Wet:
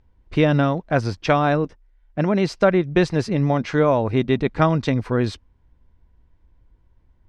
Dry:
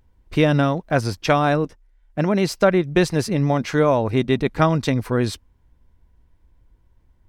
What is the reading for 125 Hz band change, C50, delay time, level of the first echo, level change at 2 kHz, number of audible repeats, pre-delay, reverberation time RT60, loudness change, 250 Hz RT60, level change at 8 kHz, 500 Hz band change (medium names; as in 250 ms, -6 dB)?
0.0 dB, no reverb, no echo, no echo, -1.0 dB, no echo, no reverb, no reverb, -0.5 dB, no reverb, no reading, -0.5 dB